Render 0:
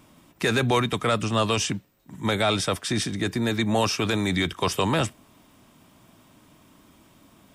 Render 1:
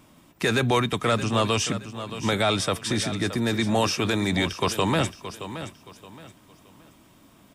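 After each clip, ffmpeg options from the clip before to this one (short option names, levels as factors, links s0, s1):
-af "aecho=1:1:622|1244|1866:0.251|0.0754|0.0226"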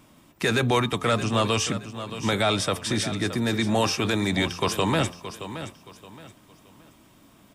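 -af "bandreject=f=87.78:t=h:w=4,bandreject=f=175.56:t=h:w=4,bandreject=f=263.34:t=h:w=4,bandreject=f=351.12:t=h:w=4,bandreject=f=438.9:t=h:w=4,bandreject=f=526.68:t=h:w=4,bandreject=f=614.46:t=h:w=4,bandreject=f=702.24:t=h:w=4,bandreject=f=790.02:t=h:w=4,bandreject=f=877.8:t=h:w=4,bandreject=f=965.58:t=h:w=4,bandreject=f=1053.36:t=h:w=4,bandreject=f=1141.14:t=h:w=4,bandreject=f=1228.92:t=h:w=4"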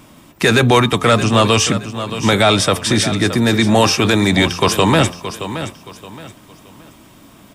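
-af "acontrast=75,volume=1.58"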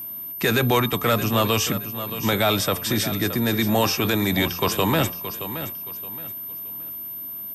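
-af "aeval=exprs='val(0)+0.0708*sin(2*PI*13000*n/s)':c=same,volume=0.398"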